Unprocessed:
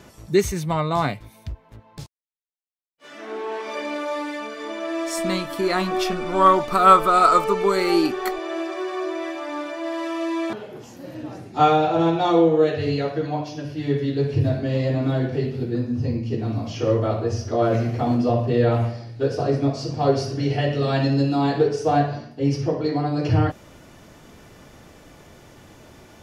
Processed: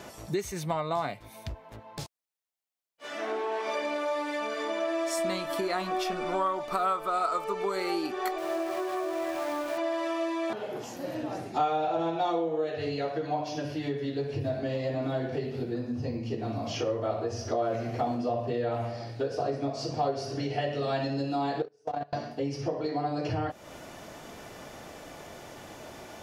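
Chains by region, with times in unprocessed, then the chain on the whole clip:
8.38–9.78 air absorption 480 m + sample gate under -36.5 dBFS
21.62–22.13 gate -16 dBFS, range -36 dB + negative-ratio compressor -28 dBFS, ratio -0.5
whole clip: low shelf 200 Hz -9.5 dB; compressor 4:1, threshold -34 dBFS; bell 690 Hz +5 dB 0.66 oct; gain +3 dB

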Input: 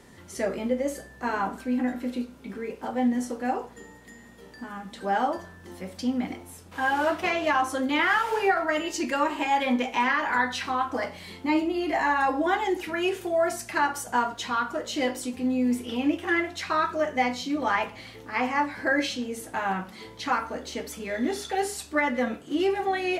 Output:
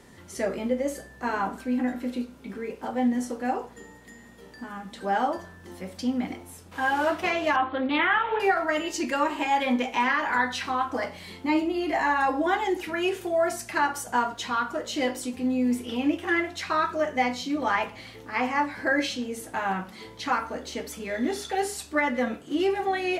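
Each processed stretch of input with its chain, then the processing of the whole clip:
7.56–8.4 steep low-pass 3700 Hz 72 dB/oct + Doppler distortion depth 0.15 ms
whole clip: dry

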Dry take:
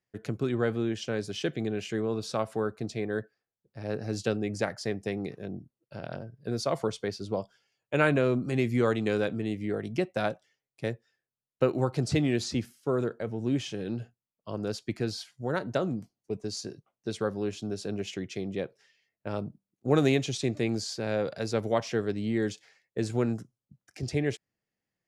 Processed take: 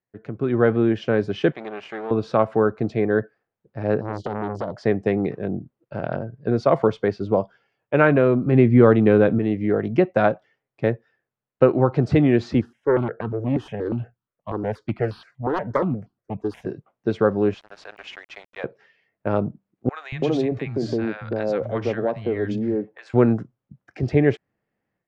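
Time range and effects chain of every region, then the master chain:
1.52–2.11 half-wave gain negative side -12 dB + HPF 1100 Hz 6 dB/oct
4.01–4.77 compressor 10:1, threshold -27 dBFS + brick-wall FIR band-stop 720–2900 Hz + core saturation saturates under 1200 Hz
8.46–9.39 LPF 4900 Hz 24 dB/oct + low shelf 430 Hz +6.5 dB
12.61–16.67 self-modulated delay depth 0.35 ms + step phaser 8.4 Hz 600–2100 Hz
17.54–18.64 HPF 790 Hz 24 dB/oct + sample gate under -49 dBFS
19.89–23.14 compressor 2.5:1, threshold -31 dBFS + three bands offset in time highs, lows, mids 0.23/0.33 s, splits 160/1000 Hz
whole clip: LPF 1700 Hz 12 dB/oct; low shelf 170 Hz -3.5 dB; AGC gain up to 12.5 dB

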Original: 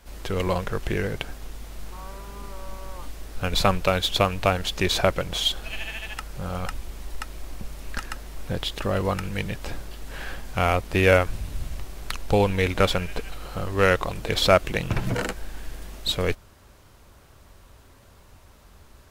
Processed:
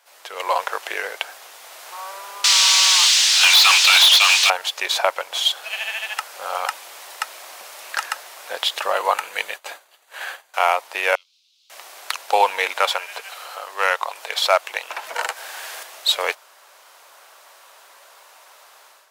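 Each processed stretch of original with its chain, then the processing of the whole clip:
2.44–4.5 Butterworth band-pass 4900 Hz, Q 1.1 + compressor, threshold -37 dBFS + overdrive pedal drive 42 dB, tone 5300 Hz, clips at -10 dBFS
8.93–10.54 HPF 150 Hz 24 dB/oct + notch 5300 Hz, Q 6.7 + expander -35 dBFS
11.15–11.7 inverse Chebyshev high-pass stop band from 1900 Hz + air absorption 250 m
12.72–15.83 HPF 390 Hz 6 dB/oct + hard clip -5.5 dBFS + upward compressor, threshold -32 dBFS
whole clip: HPF 620 Hz 24 dB/oct; dynamic EQ 910 Hz, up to +7 dB, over -43 dBFS, Q 3.2; AGC gain up to 11 dB; gain -1 dB

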